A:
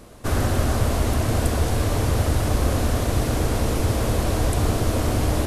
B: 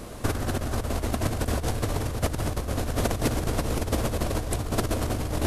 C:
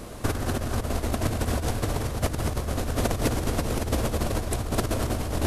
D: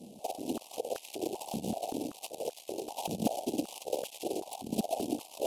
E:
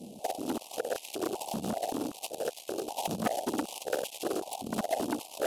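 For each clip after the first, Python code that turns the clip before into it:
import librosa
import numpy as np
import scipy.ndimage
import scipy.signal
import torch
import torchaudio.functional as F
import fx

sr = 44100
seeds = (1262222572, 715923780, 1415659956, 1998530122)

y1 = fx.over_compress(x, sr, threshold_db=-25.0, ratio=-0.5)
y2 = y1 + 10.0 ** (-10.0 / 20.0) * np.pad(y1, (int(214 * sr / 1000.0), 0))[:len(y1)]
y3 = fx.cheby_harmonics(y2, sr, harmonics=(3, 8), levels_db=(-16, -18), full_scale_db=-9.0)
y3 = scipy.signal.sosfilt(scipy.signal.cheby1(3, 1.0, [810.0, 2700.0], 'bandstop', fs=sr, output='sos'), y3)
y3 = fx.filter_held_highpass(y3, sr, hz=5.2, low_hz=210.0, high_hz=1600.0)
y3 = F.gain(torch.from_numpy(y3), -7.0).numpy()
y4 = fx.transformer_sat(y3, sr, knee_hz=1400.0)
y4 = F.gain(torch.from_numpy(y4), 4.0).numpy()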